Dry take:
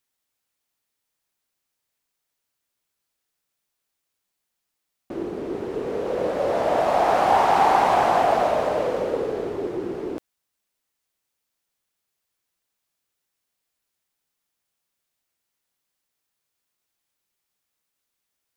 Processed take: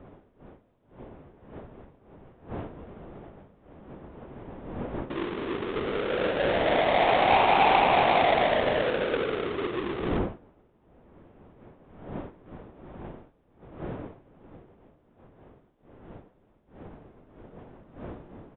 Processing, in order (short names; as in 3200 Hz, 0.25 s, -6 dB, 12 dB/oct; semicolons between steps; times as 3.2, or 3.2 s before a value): half-waves squared off; wind noise 450 Hz -36 dBFS; downsampling 8000 Hz; gain -6 dB